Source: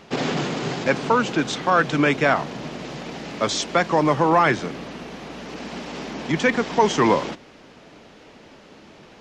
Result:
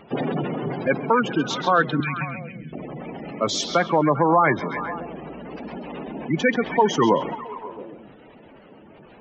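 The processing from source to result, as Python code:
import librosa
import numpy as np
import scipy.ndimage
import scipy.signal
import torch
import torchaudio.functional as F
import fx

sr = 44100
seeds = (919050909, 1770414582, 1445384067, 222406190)

y = fx.spec_gate(x, sr, threshold_db=-15, keep='strong')
y = fx.ellip_bandstop(y, sr, low_hz=210.0, high_hz=2500.0, order=3, stop_db=40, at=(2.0, 2.73))
y = fx.echo_stepped(y, sr, ms=134, hz=3700.0, octaves=-0.7, feedback_pct=70, wet_db=-5.5)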